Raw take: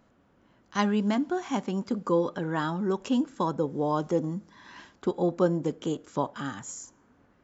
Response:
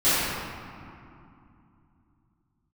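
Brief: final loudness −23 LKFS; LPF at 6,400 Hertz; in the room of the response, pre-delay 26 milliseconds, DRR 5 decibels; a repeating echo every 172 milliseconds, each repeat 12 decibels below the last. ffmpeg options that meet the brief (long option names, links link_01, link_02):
-filter_complex "[0:a]lowpass=6400,aecho=1:1:172|344|516:0.251|0.0628|0.0157,asplit=2[link_01][link_02];[1:a]atrim=start_sample=2205,adelay=26[link_03];[link_02][link_03]afir=irnorm=-1:irlink=0,volume=-23.5dB[link_04];[link_01][link_04]amix=inputs=2:normalize=0,volume=4.5dB"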